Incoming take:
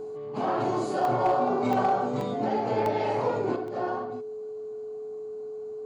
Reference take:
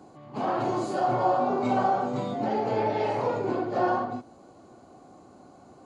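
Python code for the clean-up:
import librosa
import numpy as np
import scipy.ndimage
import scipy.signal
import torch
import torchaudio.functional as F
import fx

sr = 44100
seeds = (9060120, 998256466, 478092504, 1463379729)

y = fx.fix_declip(x, sr, threshold_db=-16.5)
y = fx.notch(y, sr, hz=430.0, q=30.0)
y = fx.fix_interpolate(y, sr, at_s=(1.05, 1.73, 2.21, 2.86, 3.68), length_ms=1.4)
y = fx.gain(y, sr, db=fx.steps((0.0, 0.0), (3.56, 6.0)))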